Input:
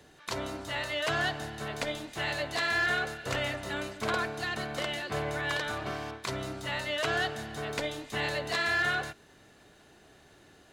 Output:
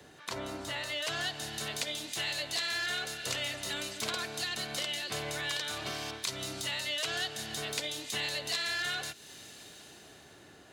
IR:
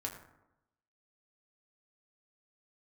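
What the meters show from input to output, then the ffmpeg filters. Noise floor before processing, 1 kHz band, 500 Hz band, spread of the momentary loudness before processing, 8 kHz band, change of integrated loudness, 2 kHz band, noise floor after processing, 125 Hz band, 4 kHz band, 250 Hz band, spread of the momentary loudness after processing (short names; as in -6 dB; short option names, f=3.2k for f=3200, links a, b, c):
-58 dBFS, -7.5 dB, -7.0 dB, 9 LU, +6.5 dB, -2.0 dB, -5.0 dB, -55 dBFS, -7.0 dB, +3.0 dB, -6.0 dB, 15 LU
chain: -filter_complex "[0:a]acrossover=split=230|1400|2800[a][b][c][d];[d]dynaudnorm=f=120:g=17:m=14.5dB[e];[a][b][c][e]amix=inputs=4:normalize=0,highpass=77,acompressor=threshold=-40dB:ratio=2.5,volume=2.5dB"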